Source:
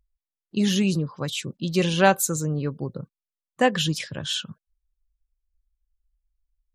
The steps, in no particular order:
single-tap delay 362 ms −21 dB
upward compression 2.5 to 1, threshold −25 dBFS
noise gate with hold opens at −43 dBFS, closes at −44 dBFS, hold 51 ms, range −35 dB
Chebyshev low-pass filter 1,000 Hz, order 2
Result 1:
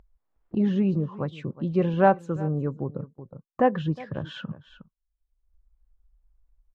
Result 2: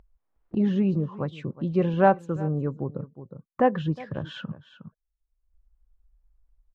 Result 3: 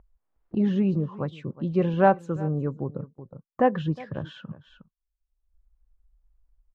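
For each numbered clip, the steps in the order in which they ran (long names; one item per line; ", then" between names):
single-tap delay, then noise gate with hold, then Chebyshev low-pass filter, then upward compression
Chebyshev low-pass filter, then noise gate with hold, then single-tap delay, then upward compression
single-tap delay, then noise gate with hold, then upward compression, then Chebyshev low-pass filter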